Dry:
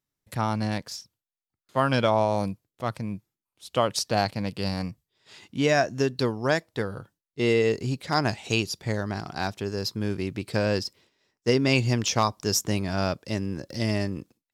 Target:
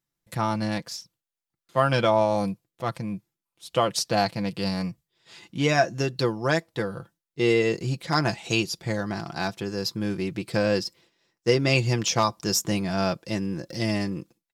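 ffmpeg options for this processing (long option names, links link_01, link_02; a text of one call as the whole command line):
ffmpeg -i in.wav -af "aecho=1:1:5.9:0.57" out.wav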